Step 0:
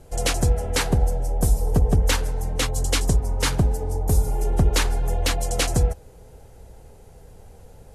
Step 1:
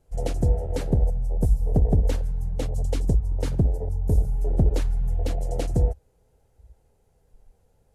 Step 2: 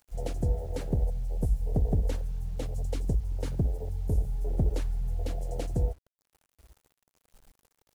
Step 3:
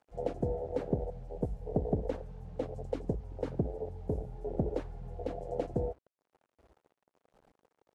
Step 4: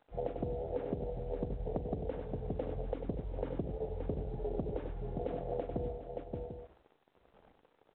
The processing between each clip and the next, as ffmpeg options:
ffmpeg -i in.wav -af "afwtdn=0.0891,volume=-1dB" out.wav
ffmpeg -i in.wav -filter_complex "[0:a]acrossover=split=930[link_01][link_02];[link_02]acompressor=mode=upward:threshold=-57dB:ratio=2.5[link_03];[link_01][link_03]amix=inputs=2:normalize=0,acrusher=bits=8:mix=0:aa=0.000001,volume=-6.5dB" out.wav
ffmpeg -i in.wav -af "bandpass=frequency=510:width_type=q:width=0.73:csg=0,volume=4dB" out.wav
ffmpeg -i in.wav -af "aecho=1:1:41|95|574|742:0.211|0.335|0.282|0.141,acompressor=threshold=-35dB:ratio=12,volume=2.5dB" -ar 8000 -c:a pcm_mulaw out.wav

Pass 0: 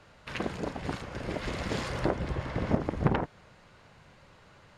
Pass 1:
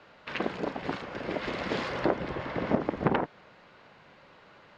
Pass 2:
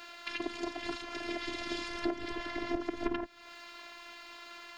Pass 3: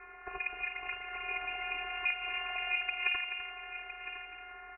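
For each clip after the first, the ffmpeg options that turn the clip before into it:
ffmpeg -i in.wav -filter_complex "[0:a]acrossover=split=180 5100:gain=0.178 1 0.0631[link_01][link_02][link_03];[link_01][link_02][link_03]amix=inputs=3:normalize=0,volume=3dB" out.wav
ffmpeg -i in.wav -filter_complex "[0:a]crystalizer=i=8.5:c=0,afftfilt=real='hypot(re,im)*cos(PI*b)':imag='0':win_size=512:overlap=0.75,acrossover=split=280[link_01][link_02];[link_02]acompressor=threshold=-42dB:ratio=4[link_03];[link_01][link_03]amix=inputs=2:normalize=0,volume=3.5dB" out.wav
ffmpeg -i in.wav -filter_complex "[0:a]asplit=2[link_01][link_02];[link_02]aecho=0:1:254:0.398[link_03];[link_01][link_03]amix=inputs=2:normalize=0,lowpass=frequency=2400:width_type=q:width=0.5098,lowpass=frequency=2400:width_type=q:width=0.6013,lowpass=frequency=2400:width_type=q:width=0.9,lowpass=frequency=2400:width_type=q:width=2.563,afreqshift=-2800,asplit=2[link_04][link_05];[link_05]aecho=0:1:1010:0.266[link_06];[link_04][link_06]amix=inputs=2:normalize=0" out.wav

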